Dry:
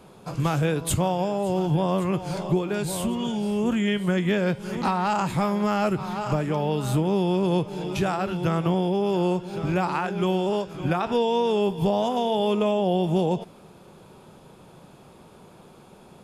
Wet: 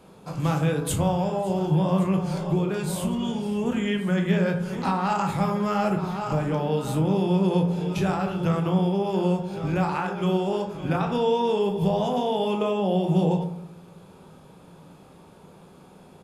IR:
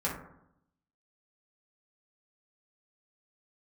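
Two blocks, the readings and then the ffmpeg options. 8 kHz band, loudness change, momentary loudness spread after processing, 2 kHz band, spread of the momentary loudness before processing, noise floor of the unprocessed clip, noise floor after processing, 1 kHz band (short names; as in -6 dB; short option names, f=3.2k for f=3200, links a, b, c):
-2.5 dB, 0.0 dB, 5 LU, -1.5 dB, 4 LU, -50 dBFS, -50 dBFS, -1.0 dB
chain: -filter_complex "[0:a]asplit=2[a][b];[b]adelay=35,volume=-13dB[c];[a][c]amix=inputs=2:normalize=0,asplit=2[d][e];[1:a]atrim=start_sample=2205,adelay=20[f];[e][f]afir=irnorm=-1:irlink=0,volume=-10dB[g];[d][g]amix=inputs=2:normalize=0,volume=-3dB"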